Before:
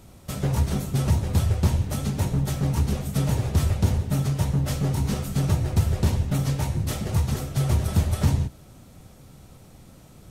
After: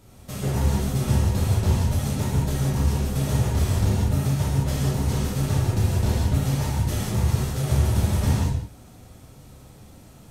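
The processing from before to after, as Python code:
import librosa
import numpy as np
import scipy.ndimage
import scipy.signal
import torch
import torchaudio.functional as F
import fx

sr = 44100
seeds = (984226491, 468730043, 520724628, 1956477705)

y = fx.rev_gated(x, sr, seeds[0], gate_ms=220, shape='flat', drr_db=-6.0)
y = y * librosa.db_to_amplitude(-5.0)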